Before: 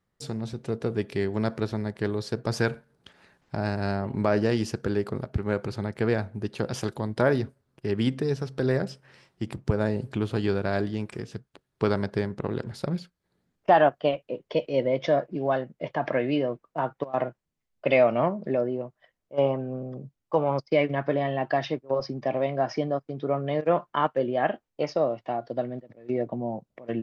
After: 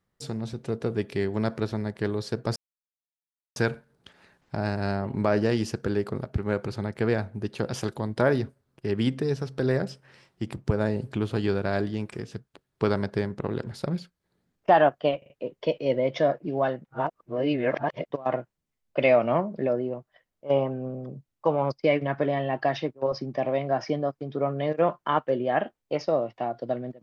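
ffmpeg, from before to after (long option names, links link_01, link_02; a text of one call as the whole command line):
ffmpeg -i in.wav -filter_complex "[0:a]asplit=7[link_01][link_02][link_03][link_04][link_05][link_06][link_07];[link_01]atrim=end=2.56,asetpts=PTS-STARTPTS,afade=type=out:start_time=2.556:duration=0.004:curve=hsin,apad=pad_dur=1[link_08];[link_02]atrim=start=2.56:end=14.222,asetpts=PTS-STARTPTS,afade=type=in:duration=0.004:curve=hsin[link_09];[link_03]atrim=start=14.178:end=14.222[link_10];[link_04]atrim=start=14.178:end=14.222[link_11];[link_05]atrim=start=14.178:end=15.732[link_12];[link_06]atrim=start=15.728:end=17.002,asetpts=PTS-STARTPTS,areverse[link_13];[link_07]atrim=start=16.998[link_14];[link_08][link_09]concat=n=2:v=0:a=1[link_15];[link_15][link_10]acrossfade=duration=0.004:curve1=hsin:curve2=hsin[link_16];[link_16][link_11]acrossfade=duration=0.004:curve1=hsin:curve2=hsin[link_17];[link_17][link_12]acrossfade=duration=0.004:curve1=hsin:curve2=hsin[link_18];[link_18][link_13]acrossfade=duration=0.004:curve1=hsin:curve2=hsin[link_19];[link_19][link_14]acrossfade=duration=0.004:curve1=hsin:curve2=hsin" out.wav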